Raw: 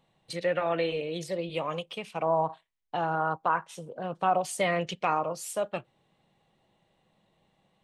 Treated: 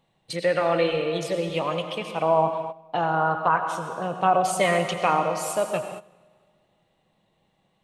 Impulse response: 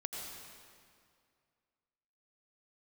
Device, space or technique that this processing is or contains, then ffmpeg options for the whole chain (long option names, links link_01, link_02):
keyed gated reverb: -filter_complex "[0:a]asplit=3[link_01][link_02][link_03];[1:a]atrim=start_sample=2205[link_04];[link_02][link_04]afir=irnorm=-1:irlink=0[link_05];[link_03]apad=whole_len=345497[link_06];[link_05][link_06]sidechaingate=range=-16dB:threshold=-57dB:ratio=16:detection=peak,volume=1dB[link_07];[link_01][link_07]amix=inputs=2:normalize=0"